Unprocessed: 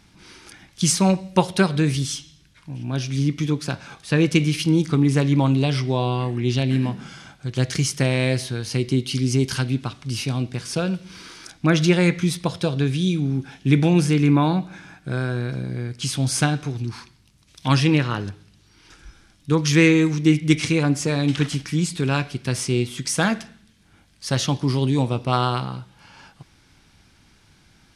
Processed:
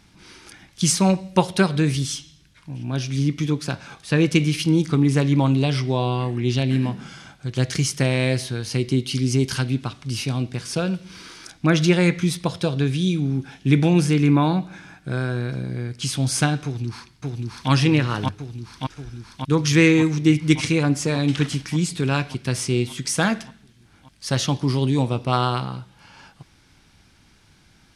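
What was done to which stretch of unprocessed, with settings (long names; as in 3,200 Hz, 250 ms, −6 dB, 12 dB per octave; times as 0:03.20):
0:16.64–0:17.70: delay throw 580 ms, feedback 75%, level −1.5 dB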